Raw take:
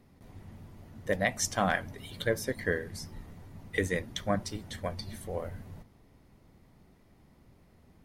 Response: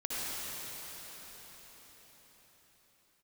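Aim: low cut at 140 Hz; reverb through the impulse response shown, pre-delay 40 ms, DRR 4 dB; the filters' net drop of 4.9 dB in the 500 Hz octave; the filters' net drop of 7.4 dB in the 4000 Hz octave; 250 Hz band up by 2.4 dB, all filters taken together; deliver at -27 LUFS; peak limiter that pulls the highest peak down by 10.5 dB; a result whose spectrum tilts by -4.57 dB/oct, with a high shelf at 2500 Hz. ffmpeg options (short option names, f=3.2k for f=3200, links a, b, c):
-filter_complex "[0:a]highpass=140,equalizer=f=250:t=o:g=6,equalizer=f=500:t=o:g=-7,highshelf=f=2.5k:g=-5.5,equalizer=f=4k:t=o:g=-4.5,alimiter=level_in=2dB:limit=-24dB:level=0:latency=1,volume=-2dB,asplit=2[a][b];[1:a]atrim=start_sample=2205,adelay=40[c];[b][c]afir=irnorm=-1:irlink=0,volume=-10.5dB[d];[a][d]amix=inputs=2:normalize=0,volume=13dB"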